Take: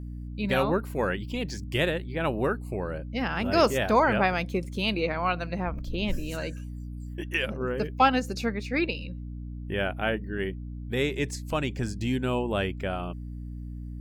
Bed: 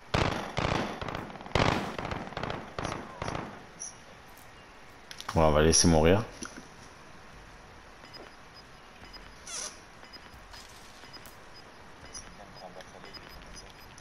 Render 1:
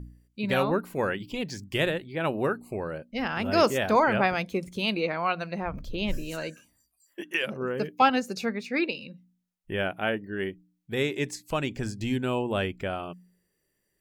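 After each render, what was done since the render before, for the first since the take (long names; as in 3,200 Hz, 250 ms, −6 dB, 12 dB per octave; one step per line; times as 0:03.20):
hum removal 60 Hz, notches 5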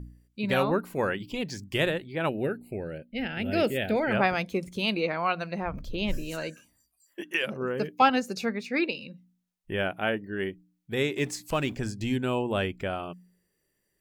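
0:02.29–0:04.11: phaser with its sweep stopped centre 2,600 Hz, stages 4
0:11.17–0:11.75: mu-law and A-law mismatch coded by mu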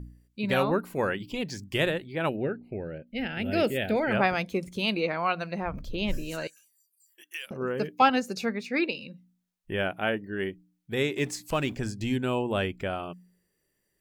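0:02.36–0:03.07: high-frequency loss of the air 290 metres
0:06.47–0:07.51: first difference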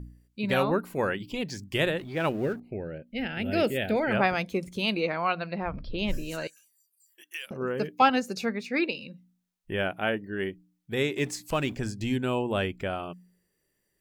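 0:01.98–0:02.60: mu-law and A-law mismatch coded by mu
0:05.29–0:05.99: linear-phase brick-wall low-pass 5,600 Hz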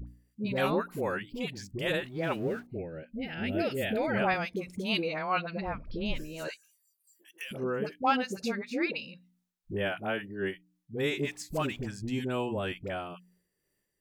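all-pass dispersion highs, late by 71 ms, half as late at 670 Hz
amplitude modulation by smooth noise, depth 60%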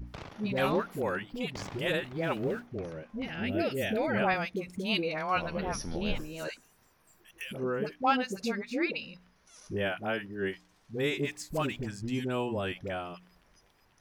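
mix in bed −17.5 dB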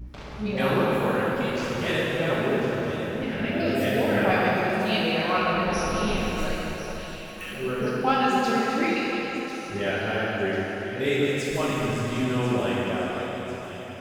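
delay with a high-pass on its return 1,045 ms, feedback 53%, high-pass 1,800 Hz, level −11 dB
dense smooth reverb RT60 4.5 s, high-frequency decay 0.7×, DRR −6.5 dB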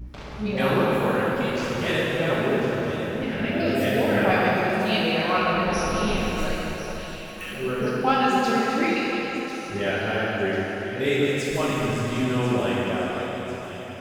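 level +1.5 dB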